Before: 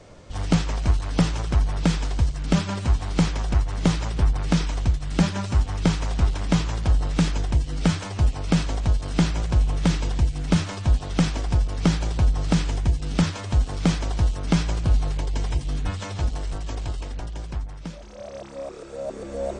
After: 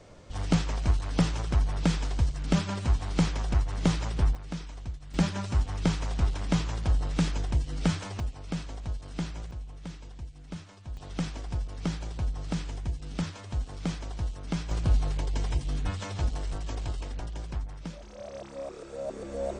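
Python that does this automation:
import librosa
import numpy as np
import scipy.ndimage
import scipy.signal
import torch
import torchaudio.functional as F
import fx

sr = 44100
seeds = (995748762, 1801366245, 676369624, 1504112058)

y = fx.gain(x, sr, db=fx.steps((0.0, -4.5), (4.35, -15.5), (5.14, -5.5), (8.2, -13.0), (9.51, -20.0), (10.97, -11.0), (14.71, -4.0)))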